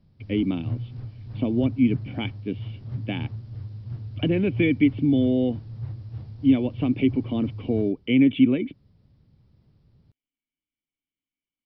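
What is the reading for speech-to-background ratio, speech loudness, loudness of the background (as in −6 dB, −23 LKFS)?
12.0 dB, −23.5 LKFS, −35.5 LKFS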